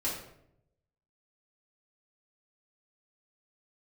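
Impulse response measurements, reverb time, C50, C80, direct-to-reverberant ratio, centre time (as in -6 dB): 0.75 s, 3.5 dB, 6.5 dB, -8.5 dB, 42 ms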